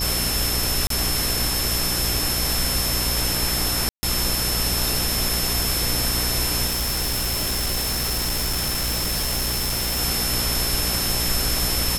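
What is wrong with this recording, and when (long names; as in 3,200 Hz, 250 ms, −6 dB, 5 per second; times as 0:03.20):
mains buzz 60 Hz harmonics 14 −29 dBFS
whistle 5,300 Hz −26 dBFS
0:00.87–0:00.90: drop-out 33 ms
0:03.89–0:04.03: drop-out 140 ms
0:06.66–0:10.00: clipping −20 dBFS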